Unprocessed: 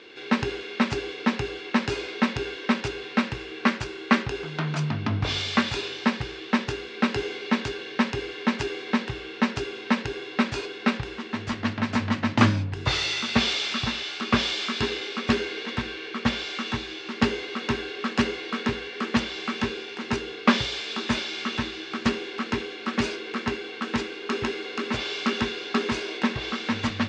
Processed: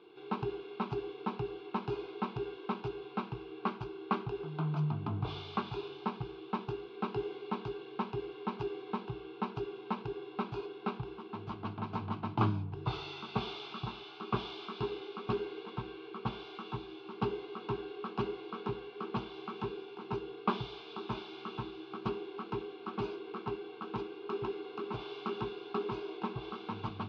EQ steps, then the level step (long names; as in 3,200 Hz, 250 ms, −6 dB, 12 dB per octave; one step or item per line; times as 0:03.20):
low-pass filter 3,300 Hz 6 dB per octave
high-frequency loss of the air 310 metres
phaser with its sweep stopped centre 370 Hz, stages 8
−4.5 dB